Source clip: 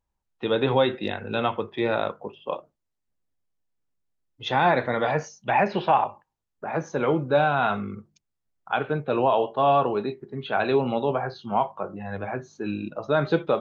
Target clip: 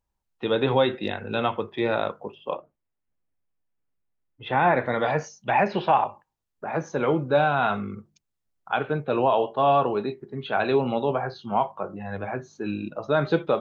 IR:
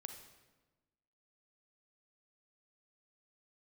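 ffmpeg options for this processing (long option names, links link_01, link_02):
-filter_complex "[0:a]asettb=1/sr,asplit=3[link_01][link_02][link_03];[link_01]atrim=end=2.534[link_04];[link_02]atrim=start=2.53:end=4.86,asetpts=PTS-STARTPTS,afade=type=in:duration=0.004:curve=qsin,afade=type=out:start_time=2.326:duration=0.004:curve=qsin,lowpass=frequency=2800:width=0.5412,lowpass=frequency=2800:width=1.3066[link_05];[link_03]atrim=start=4.856[link_06];[link_04][link_05]acrossfade=duration=0.004:curve1=hsin:curve2=qsin[link_07];[link_07][link_06]acrossfade=duration=0.004:curve1=qsin:curve2=hsin"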